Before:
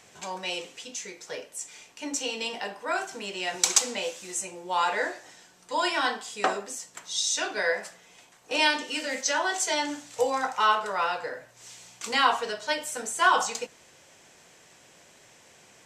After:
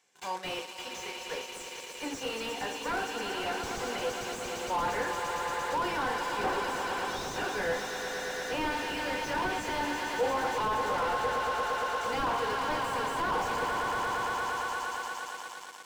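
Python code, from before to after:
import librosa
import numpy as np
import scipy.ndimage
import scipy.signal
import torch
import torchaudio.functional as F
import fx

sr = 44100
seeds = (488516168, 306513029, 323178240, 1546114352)

y = fx.notch_comb(x, sr, f0_hz=640.0)
y = fx.echo_swell(y, sr, ms=115, loudest=5, wet_db=-11.5)
y = fx.leveller(y, sr, passes=3)
y = fx.highpass(y, sr, hz=470.0, slope=6)
y = fx.slew_limit(y, sr, full_power_hz=110.0)
y = y * 10.0 ** (-8.5 / 20.0)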